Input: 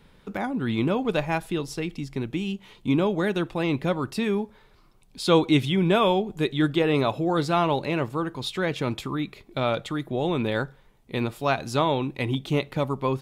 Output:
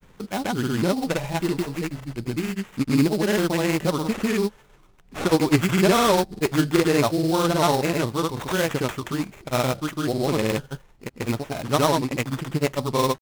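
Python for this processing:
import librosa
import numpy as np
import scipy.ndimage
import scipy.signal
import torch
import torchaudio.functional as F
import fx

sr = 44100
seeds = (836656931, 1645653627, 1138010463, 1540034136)

y = fx.sample_hold(x, sr, seeds[0], rate_hz=4700.0, jitter_pct=20)
y = fx.granulator(y, sr, seeds[1], grain_ms=100.0, per_s=20.0, spray_ms=100.0, spread_st=0)
y = y * 10.0 ** (4.0 / 20.0)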